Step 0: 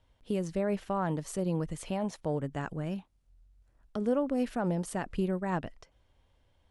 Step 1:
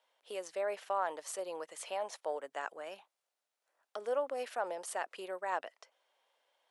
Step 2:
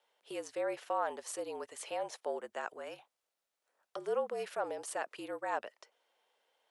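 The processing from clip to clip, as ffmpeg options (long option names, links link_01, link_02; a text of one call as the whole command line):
ffmpeg -i in.wav -af "highpass=frequency=530:width=0.5412,highpass=frequency=530:width=1.3066" out.wav
ffmpeg -i in.wav -af "afreqshift=-52" out.wav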